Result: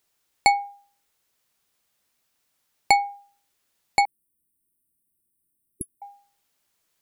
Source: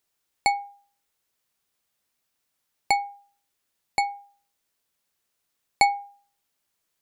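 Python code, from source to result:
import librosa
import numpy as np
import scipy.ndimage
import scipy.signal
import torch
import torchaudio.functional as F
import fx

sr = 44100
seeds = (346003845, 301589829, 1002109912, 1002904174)

y = fx.brickwall_bandstop(x, sr, low_hz=390.0, high_hz=8100.0, at=(4.05, 6.02))
y = y * librosa.db_to_amplitude(4.5)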